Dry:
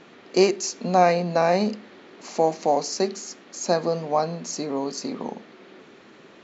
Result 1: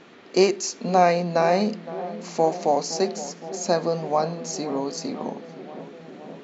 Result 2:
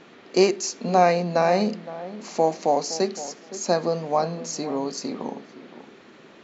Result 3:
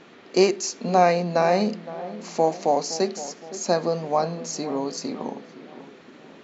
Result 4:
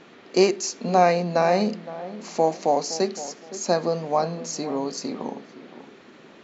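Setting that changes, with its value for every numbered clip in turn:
filtered feedback delay, feedback: 83%, 17%, 52%, 30%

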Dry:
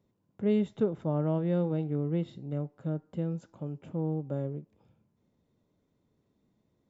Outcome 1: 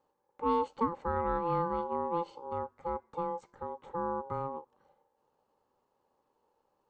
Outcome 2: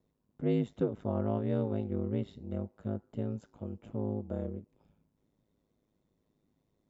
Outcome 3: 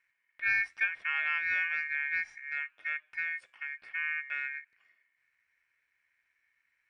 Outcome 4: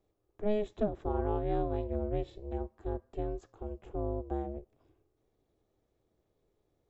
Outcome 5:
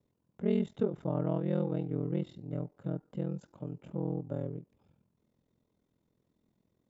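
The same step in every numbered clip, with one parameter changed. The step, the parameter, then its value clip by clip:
ring modulator, frequency: 680 Hz, 52 Hz, 2 kHz, 210 Hz, 21 Hz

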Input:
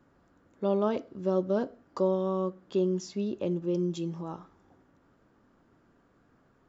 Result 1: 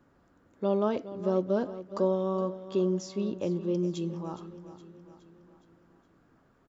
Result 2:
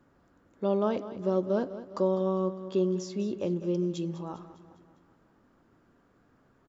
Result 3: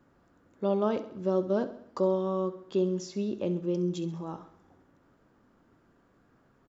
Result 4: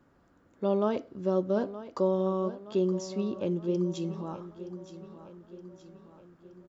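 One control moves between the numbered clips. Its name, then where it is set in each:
feedback delay, time: 416 ms, 202 ms, 67 ms, 921 ms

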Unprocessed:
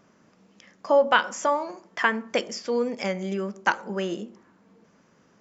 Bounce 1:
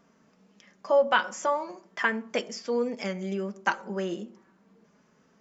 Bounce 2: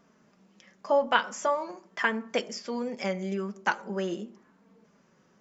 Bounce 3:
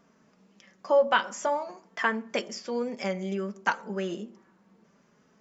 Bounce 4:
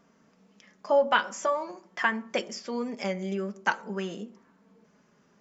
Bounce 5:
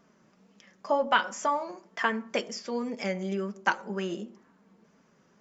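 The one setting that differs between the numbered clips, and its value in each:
flange, rate: 0.36 Hz, 0.86 Hz, 0.54 Hz, 0.24 Hz, 2 Hz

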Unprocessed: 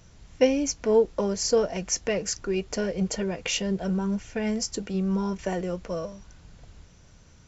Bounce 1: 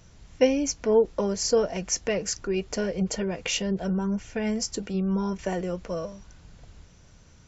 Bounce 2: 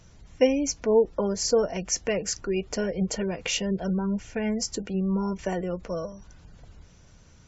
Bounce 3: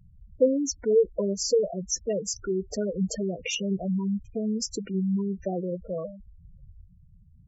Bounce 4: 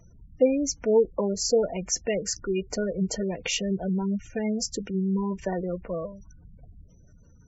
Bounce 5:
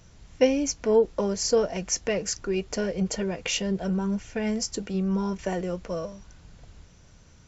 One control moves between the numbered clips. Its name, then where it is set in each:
spectral gate, under each frame's peak: -50 dB, -35 dB, -10 dB, -20 dB, -60 dB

